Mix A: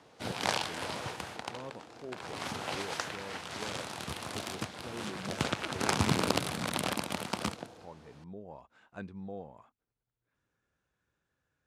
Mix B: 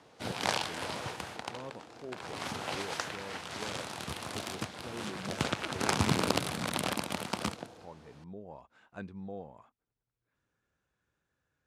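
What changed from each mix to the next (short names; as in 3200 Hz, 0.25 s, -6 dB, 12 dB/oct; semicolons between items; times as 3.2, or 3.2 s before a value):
none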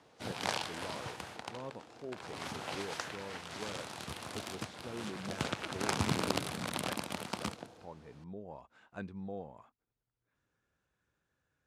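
background -4.0 dB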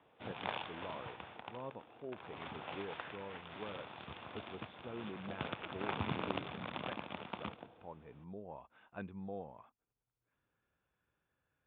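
background -3.5 dB; master: add rippled Chebyshev low-pass 3600 Hz, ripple 3 dB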